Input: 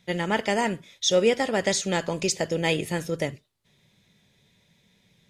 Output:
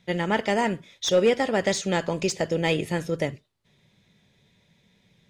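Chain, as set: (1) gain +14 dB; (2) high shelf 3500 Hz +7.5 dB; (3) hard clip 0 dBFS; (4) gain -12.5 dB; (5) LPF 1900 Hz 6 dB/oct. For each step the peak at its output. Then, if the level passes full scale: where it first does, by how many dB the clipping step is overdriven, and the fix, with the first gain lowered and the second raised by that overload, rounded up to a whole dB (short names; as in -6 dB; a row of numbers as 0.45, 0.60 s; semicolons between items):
+5.0, +9.5, 0.0, -12.5, -12.5 dBFS; step 1, 9.5 dB; step 1 +4 dB, step 4 -2.5 dB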